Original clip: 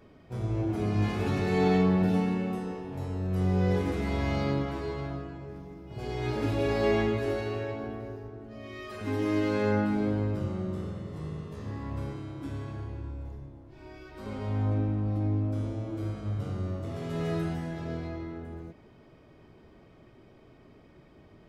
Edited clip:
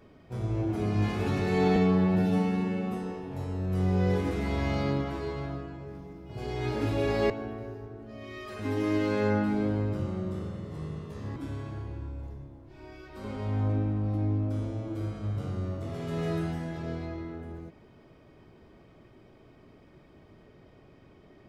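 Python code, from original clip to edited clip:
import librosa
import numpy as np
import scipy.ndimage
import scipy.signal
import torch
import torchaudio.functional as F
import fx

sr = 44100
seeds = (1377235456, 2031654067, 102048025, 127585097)

y = fx.edit(x, sr, fx.stretch_span(start_s=1.76, length_s=0.78, factor=1.5),
    fx.cut(start_s=6.91, length_s=0.81),
    fx.cut(start_s=11.78, length_s=0.6), tone=tone)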